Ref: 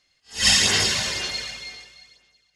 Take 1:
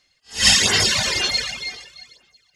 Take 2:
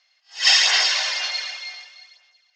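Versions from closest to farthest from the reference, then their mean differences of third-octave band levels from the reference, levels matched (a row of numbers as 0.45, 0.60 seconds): 1, 2; 1.5, 9.0 decibels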